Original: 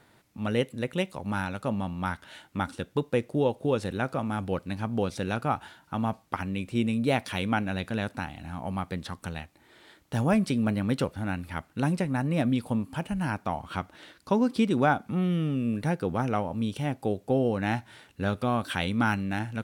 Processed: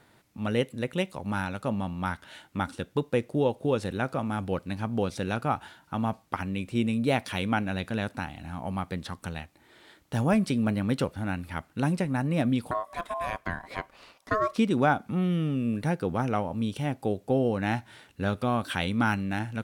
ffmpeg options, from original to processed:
-filter_complex "[0:a]asettb=1/sr,asplit=3[s0][s1][s2];[s0]atrim=end=12.714[s3];[s1]atrim=start=12.71:end=14.58,asetpts=PTS-STARTPTS,afade=t=in:d=0.004:c=qsin,afade=t=out:st=1.866:d=0.004:c=qsin,aeval=exprs='val(0)*sin(2*PI*860*n/s)':c=same[s4];[s2]atrim=start=14.576[s5];[s3][s4]acrossfade=d=0.004:c1=hsin:c2=qsin[s6];[s6][s5]acrossfade=d=0.004:c1=qsin:c2=hsin"

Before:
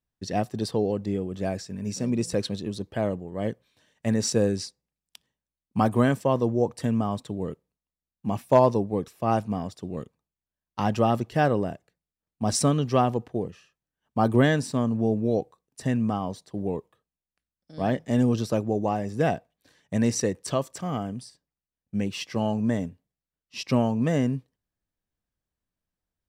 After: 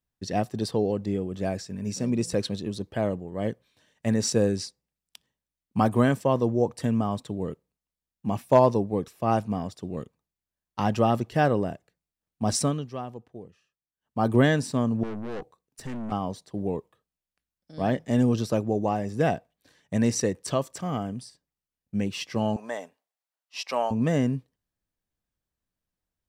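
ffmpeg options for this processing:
-filter_complex "[0:a]asettb=1/sr,asplit=3[s0][s1][s2];[s0]atrim=end=15.034[s3];[s1]atrim=start=15.03:end=16.12,asetpts=PTS-STARTPTS,afade=t=in:d=0.004:c=qsin,afade=t=out:st=1.086:d=0.004:c=qsin,aeval=exprs='(tanh(39.8*val(0)+0.5)-tanh(0.5))/39.8':c=same[s4];[s2]atrim=start=16.116[s5];[s3][s4]acrossfade=d=0.004:c1=hsin:c2=qsin[s6];[s6][s5]acrossfade=d=0.004:c1=qsin:c2=hsin,asettb=1/sr,asplit=3[s7][s8][s9];[s7]atrim=end=22.564[s10];[s8]atrim=start=22.56:end=23.91,asetpts=PTS-STARTPTS,afade=t=in:d=0.004:c=qsin,afade=t=out:st=1.346:d=0.004:c=qsin,highpass=f=740:t=q:w=1.6[s11];[s9]atrim=start=23.906[s12];[s10][s11]acrossfade=d=0.004:c1=hsin:c2=qsin[s13];[s13][s12]acrossfade=d=0.004:c1=qsin:c2=hsin,asplit=3[s14][s15][s16];[s14]atrim=end=12.91,asetpts=PTS-STARTPTS,afade=t=out:st=12.51:d=0.4:silence=0.211349[s17];[s15]atrim=start=12.91:end=13.94,asetpts=PTS-STARTPTS,volume=0.211[s18];[s16]atrim=start=13.94,asetpts=PTS-STARTPTS,afade=t=in:d=0.4:silence=0.211349[s19];[s17][s18][s19]concat=n=3:v=0:a=1"

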